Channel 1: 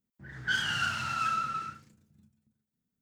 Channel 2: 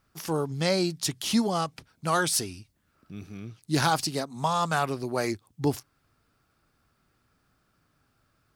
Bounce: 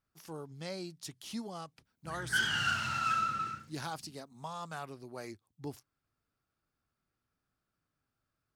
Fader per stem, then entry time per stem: -1.0, -16.0 dB; 1.85, 0.00 s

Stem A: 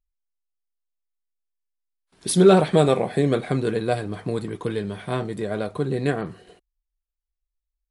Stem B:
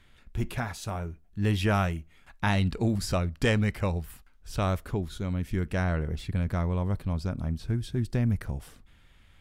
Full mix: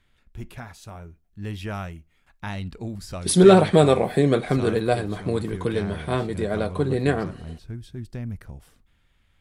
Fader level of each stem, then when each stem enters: +1.5, -6.5 dB; 1.00, 0.00 s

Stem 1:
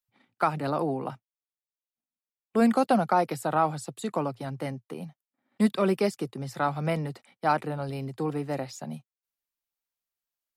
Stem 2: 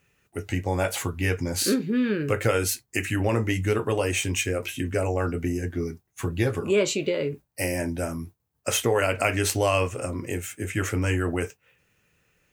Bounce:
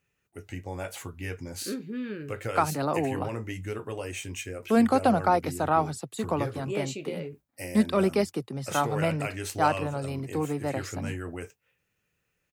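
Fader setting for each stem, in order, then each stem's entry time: +0.5, -10.5 dB; 2.15, 0.00 s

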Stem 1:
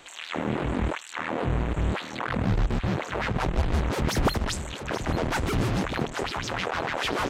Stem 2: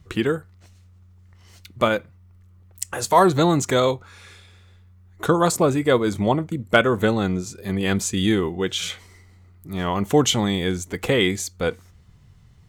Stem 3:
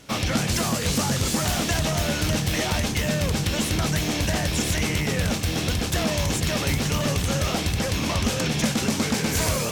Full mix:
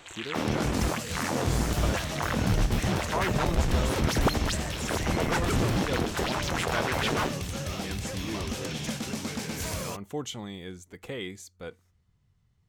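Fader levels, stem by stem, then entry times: -1.0, -17.0, -10.0 dB; 0.00, 0.00, 0.25 s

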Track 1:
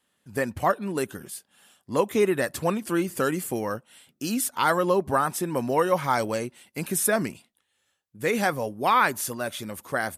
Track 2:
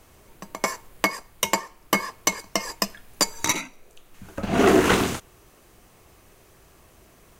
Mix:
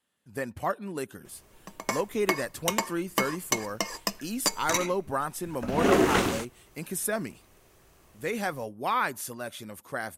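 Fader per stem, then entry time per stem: -6.5, -5.0 dB; 0.00, 1.25 s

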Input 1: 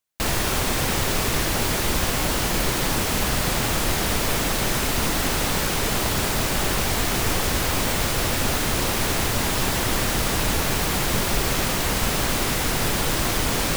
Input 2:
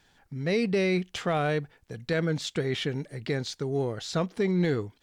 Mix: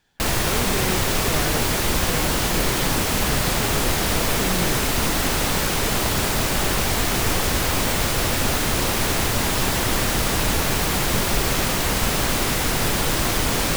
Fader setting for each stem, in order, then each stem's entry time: +1.5, -4.0 dB; 0.00, 0.00 s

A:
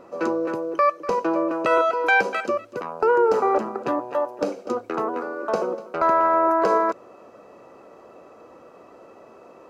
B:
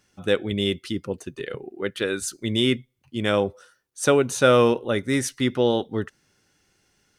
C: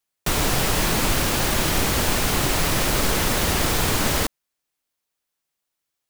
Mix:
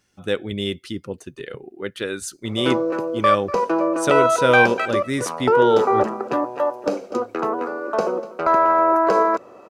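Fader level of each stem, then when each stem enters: +2.5 dB, -1.5 dB, off; 2.45 s, 0.00 s, off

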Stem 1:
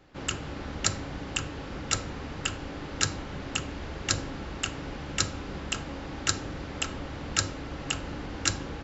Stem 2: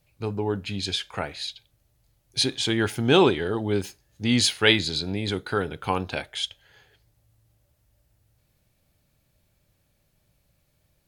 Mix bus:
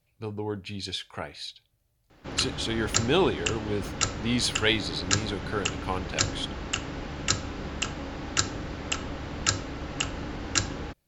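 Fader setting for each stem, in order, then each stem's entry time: +1.5, -5.5 dB; 2.10, 0.00 s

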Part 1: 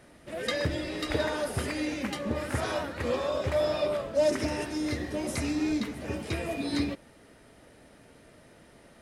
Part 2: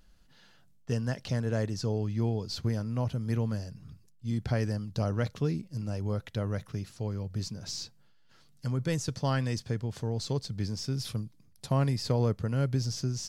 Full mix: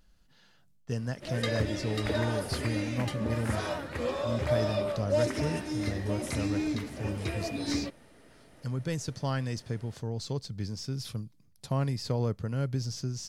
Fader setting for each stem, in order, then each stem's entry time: -2.5, -2.5 dB; 0.95, 0.00 s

